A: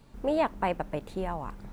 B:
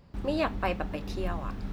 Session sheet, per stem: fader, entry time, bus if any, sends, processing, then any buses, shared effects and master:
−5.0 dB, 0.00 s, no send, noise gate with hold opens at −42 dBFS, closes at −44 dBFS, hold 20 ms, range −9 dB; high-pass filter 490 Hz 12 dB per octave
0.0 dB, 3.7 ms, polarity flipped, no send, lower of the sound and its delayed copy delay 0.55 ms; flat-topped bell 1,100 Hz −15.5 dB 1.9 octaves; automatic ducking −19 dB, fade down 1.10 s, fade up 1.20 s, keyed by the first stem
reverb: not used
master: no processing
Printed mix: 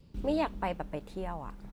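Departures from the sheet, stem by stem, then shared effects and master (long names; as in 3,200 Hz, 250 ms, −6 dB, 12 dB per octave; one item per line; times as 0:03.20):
stem A: missing high-pass filter 490 Hz 12 dB per octave
stem B: missing lower of the sound and its delayed copy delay 0.55 ms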